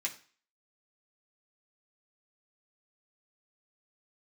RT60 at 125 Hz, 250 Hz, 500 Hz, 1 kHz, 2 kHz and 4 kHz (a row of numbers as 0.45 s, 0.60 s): 0.35 s, 0.40 s, 0.40 s, 0.45 s, 0.45 s, 0.40 s